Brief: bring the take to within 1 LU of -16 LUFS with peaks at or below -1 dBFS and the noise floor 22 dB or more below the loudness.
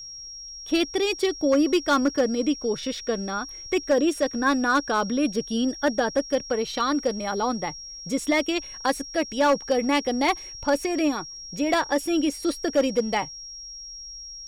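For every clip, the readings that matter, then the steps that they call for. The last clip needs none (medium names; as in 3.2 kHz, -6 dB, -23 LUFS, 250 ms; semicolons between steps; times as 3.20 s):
clipped samples 0.6%; clipping level -14.0 dBFS; steady tone 5.6 kHz; tone level -37 dBFS; loudness -24.5 LUFS; peak level -14.0 dBFS; loudness target -16.0 LUFS
-> clip repair -14 dBFS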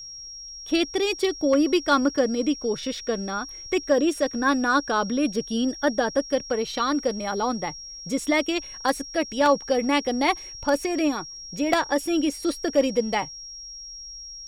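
clipped samples 0.0%; steady tone 5.6 kHz; tone level -37 dBFS
-> band-stop 5.6 kHz, Q 30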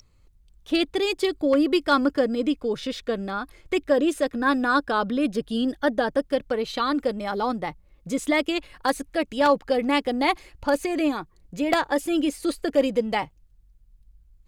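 steady tone not found; loudness -24.5 LUFS; peak level -5.0 dBFS; loudness target -16.0 LUFS
-> trim +8.5 dB; peak limiter -1 dBFS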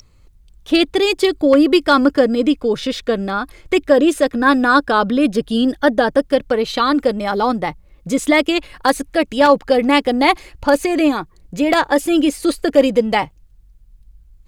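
loudness -16.0 LUFS; peak level -1.0 dBFS; noise floor -49 dBFS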